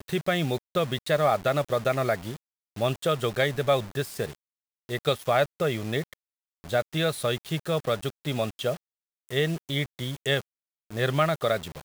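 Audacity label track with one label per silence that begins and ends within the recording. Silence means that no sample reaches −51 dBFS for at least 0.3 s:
2.370000	2.760000	silence
4.350000	4.890000	silence
6.130000	6.640000	silence
8.770000	9.290000	silence
10.420000	10.910000	silence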